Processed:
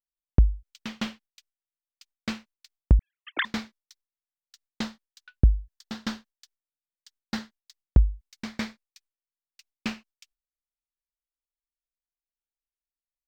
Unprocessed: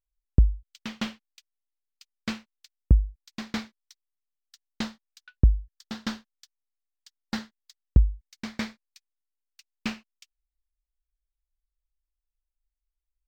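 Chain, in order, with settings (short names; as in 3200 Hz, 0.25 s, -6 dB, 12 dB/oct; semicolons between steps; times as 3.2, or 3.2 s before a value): 2.99–3.45 sine-wave speech; gate with hold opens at -53 dBFS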